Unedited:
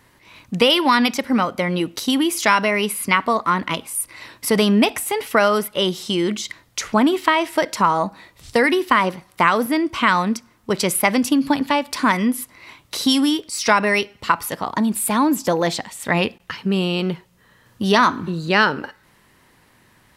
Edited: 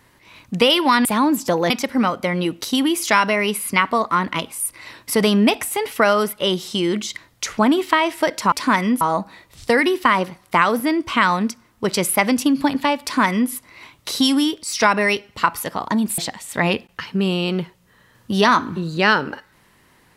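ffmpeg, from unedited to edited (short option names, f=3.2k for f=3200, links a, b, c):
-filter_complex "[0:a]asplit=6[a][b][c][d][e][f];[a]atrim=end=1.052[g];[b]atrim=start=15.038:end=15.692[h];[c]atrim=start=1.048:end=7.872[i];[d]atrim=start=11.878:end=12.372[j];[e]atrim=start=7.868:end=15.042[k];[f]atrim=start=15.688[l];[g][h]acrossfade=d=0.004:c1=hsin:c2=hsin[m];[m][i]acrossfade=d=0.004:c1=hsin:c2=hsin[n];[n][j]acrossfade=d=0.004:c1=hsin:c2=hsin[o];[o][k]acrossfade=d=0.004:c1=hsin:c2=hsin[p];[p][l]acrossfade=d=0.004:c1=hsin:c2=hsin"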